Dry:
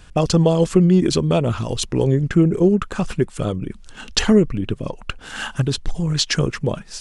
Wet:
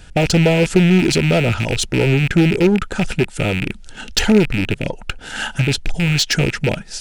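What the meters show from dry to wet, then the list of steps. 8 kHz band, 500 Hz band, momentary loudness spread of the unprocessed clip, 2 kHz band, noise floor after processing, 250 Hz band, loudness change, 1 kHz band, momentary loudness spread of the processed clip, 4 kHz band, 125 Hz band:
+3.0 dB, +1.5 dB, 13 LU, +9.5 dB, -38 dBFS, +1.5 dB, +2.5 dB, +2.0 dB, 10 LU, +4.0 dB, +2.5 dB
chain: rattle on loud lows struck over -26 dBFS, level -14 dBFS; in parallel at -7 dB: wavefolder -17.5 dBFS; on the sum: Butterworth band-stop 1.1 kHz, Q 4.1; trim +1 dB

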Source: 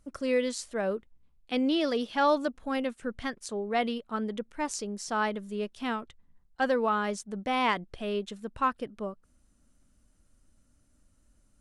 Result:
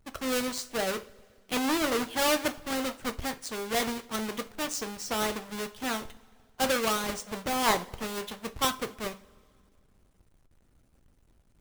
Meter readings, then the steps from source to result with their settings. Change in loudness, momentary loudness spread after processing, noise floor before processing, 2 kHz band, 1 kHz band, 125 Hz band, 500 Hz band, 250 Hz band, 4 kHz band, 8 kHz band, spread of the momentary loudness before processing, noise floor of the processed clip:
+0.5 dB, 10 LU, -67 dBFS, +1.5 dB, -1.5 dB, +0.5 dB, -2.0 dB, -2.0 dB, +5.5 dB, +8.5 dB, 10 LU, -65 dBFS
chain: square wave that keeps the level; two-slope reverb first 0.33 s, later 2.1 s, from -22 dB, DRR 6.5 dB; harmonic-percussive split harmonic -7 dB

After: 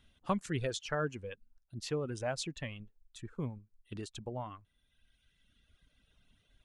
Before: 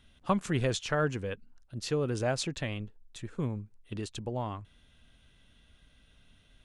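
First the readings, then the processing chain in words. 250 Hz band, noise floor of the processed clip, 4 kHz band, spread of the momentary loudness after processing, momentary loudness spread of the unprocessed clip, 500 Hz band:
-6.0 dB, -76 dBFS, -5.0 dB, 15 LU, 14 LU, -5.5 dB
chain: reverb removal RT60 1.6 s; trim -4.5 dB

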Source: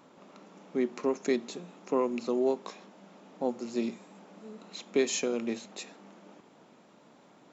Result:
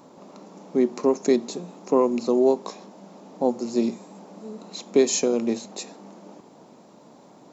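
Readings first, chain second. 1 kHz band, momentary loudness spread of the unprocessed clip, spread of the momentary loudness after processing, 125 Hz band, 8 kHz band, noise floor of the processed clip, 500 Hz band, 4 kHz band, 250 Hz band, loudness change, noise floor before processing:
+7.5 dB, 18 LU, 19 LU, +8.5 dB, no reading, -51 dBFS, +8.5 dB, +5.5 dB, +8.5 dB, +8.5 dB, -59 dBFS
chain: high-order bell 2.1 kHz -8 dB; trim +8.5 dB

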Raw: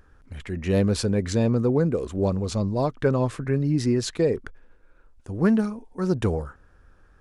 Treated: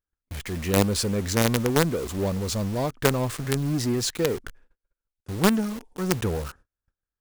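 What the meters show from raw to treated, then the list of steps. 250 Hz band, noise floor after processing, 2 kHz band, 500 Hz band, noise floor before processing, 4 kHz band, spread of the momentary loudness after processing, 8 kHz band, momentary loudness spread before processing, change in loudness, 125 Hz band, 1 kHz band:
-2.5 dB, under -85 dBFS, +5.5 dB, -2.0 dB, -56 dBFS, +6.5 dB, 11 LU, +8.0 dB, 10 LU, -1.0 dB, -2.0 dB, +3.0 dB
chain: gate -47 dBFS, range -32 dB; in parallel at -5 dB: companded quantiser 2-bit; on the sum: treble shelf 3.9 kHz +7 dB; trim -5.5 dB

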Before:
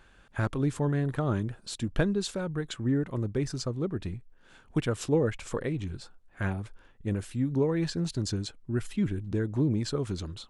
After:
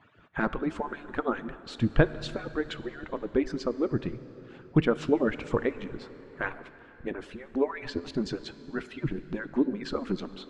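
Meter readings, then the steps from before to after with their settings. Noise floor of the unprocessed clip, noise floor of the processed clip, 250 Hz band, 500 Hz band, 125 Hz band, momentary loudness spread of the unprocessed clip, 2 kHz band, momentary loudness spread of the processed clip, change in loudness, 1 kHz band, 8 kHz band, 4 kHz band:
-58 dBFS, -52 dBFS, 0.0 dB, +2.0 dB, -5.5 dB, 8 LU, +5.0 dB, 14 LU, -0.5 dB, +4.5 dB, under -10 dB, -2.0 dB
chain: harmonic-percussive separation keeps percussive; low-pass 2.6 kHz 12 dB/octave; plate-style reverb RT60 3.9 s, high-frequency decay 0.8×, DRR 13.5 dB; trim +6 dB

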